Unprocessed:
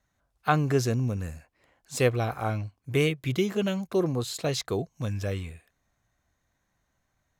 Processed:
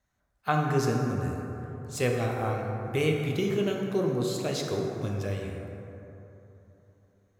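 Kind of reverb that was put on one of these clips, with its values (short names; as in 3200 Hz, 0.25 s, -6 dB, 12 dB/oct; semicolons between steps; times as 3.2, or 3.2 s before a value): plate-style reverb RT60 3.4 s, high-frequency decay 0.35×, DRR 0 dB; gain -4 dB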